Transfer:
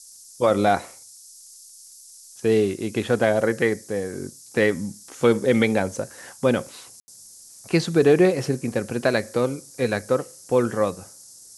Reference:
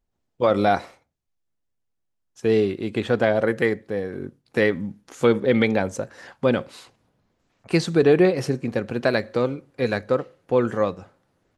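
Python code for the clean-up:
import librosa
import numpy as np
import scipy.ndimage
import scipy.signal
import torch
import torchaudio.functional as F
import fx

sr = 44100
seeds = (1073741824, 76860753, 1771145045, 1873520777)

y = fx.fix_declick_ar(x, sr, threshold=6.5)
y = fx.fix_ambience(y, sr, seeds[0], print_start_s=1.63, print_end_s=2.13, start_s=7.0, end_s=7.08)
y = fx.noise_reduce(y, sr, print_start_s=1.63, print_end_s=2.13, reduce_db=28.0)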